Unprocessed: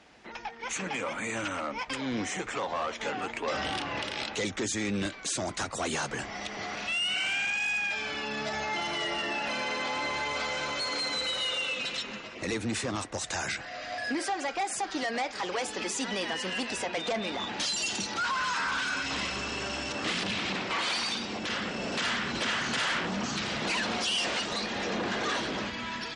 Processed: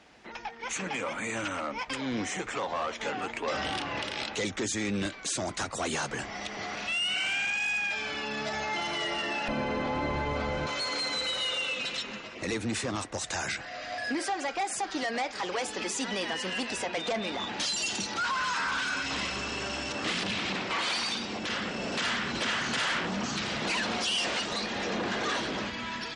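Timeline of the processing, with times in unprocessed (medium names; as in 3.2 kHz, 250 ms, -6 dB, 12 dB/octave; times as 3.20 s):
9.48–10.67 s: tilt EQ -4.5 dB/octave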